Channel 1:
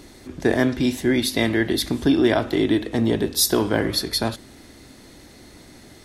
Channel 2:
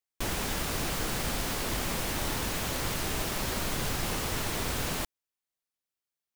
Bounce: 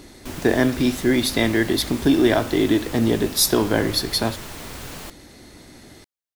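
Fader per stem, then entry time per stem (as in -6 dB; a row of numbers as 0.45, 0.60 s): +1.0, -4.0 dB; 0.00, 0.05 s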